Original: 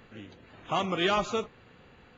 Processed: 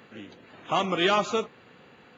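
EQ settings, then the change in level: high-pass 160 Hz 12 dB/octave; +3.5 dB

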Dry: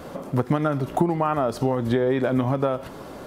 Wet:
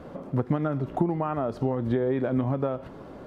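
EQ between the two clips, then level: peaking EQ 940 Hz -3 dB 2.1 oct; treble shelf 2.6 kHz -10.5 dB; treble shelf 6.7 kHz -11 dB; -2.5 dB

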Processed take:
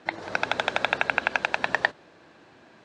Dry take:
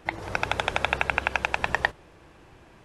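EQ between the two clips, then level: cabinet simulation 170–7700 Hz, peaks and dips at 250 Hz +6 dB, 640 Hz +4 dB, 1.6 kHz +5 dB, 4.1 kHz +7 dB; -1.5 dB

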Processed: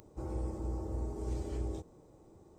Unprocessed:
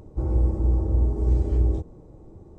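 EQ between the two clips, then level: tilt EQ +3 dB/octave; -5.0 dB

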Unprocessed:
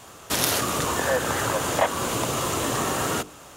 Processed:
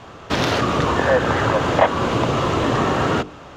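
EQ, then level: distance through air 210 m; bass shelf 360 Hz +3 dB; +7.0 dB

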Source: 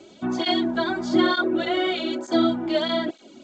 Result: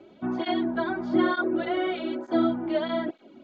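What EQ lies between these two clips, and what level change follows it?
low-pass 2.1 kHz 12 dB/octave; -3.0 dB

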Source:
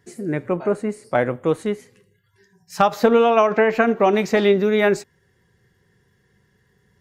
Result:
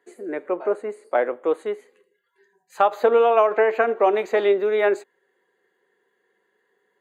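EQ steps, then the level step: high-pass 360 Hz 24 dB/octave; Butterworth band-stop 5.4 kHz, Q 3.7; treble shelf 2.7 kHz -12 dB; 0.0 dB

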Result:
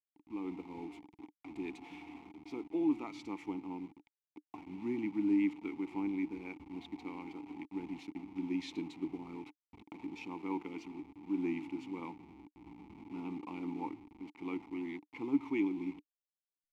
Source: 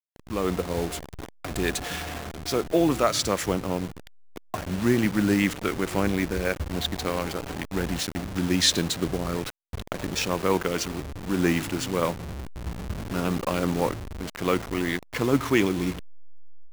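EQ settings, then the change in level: vowel filter u; -3.5 dB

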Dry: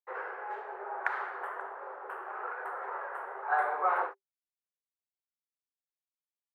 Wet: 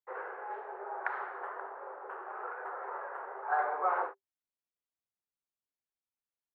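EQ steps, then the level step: low-pass 1.3 kHz 6 dB/octave; 0.0 dB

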